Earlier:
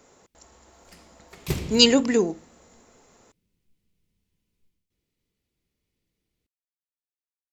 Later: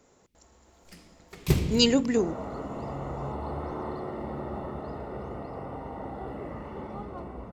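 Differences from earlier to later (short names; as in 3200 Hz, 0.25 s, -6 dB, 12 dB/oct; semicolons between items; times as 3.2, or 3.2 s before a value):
speech -7.0 dB; second sound: unmuted; master: add low shelf 400 Hz +5.5 dB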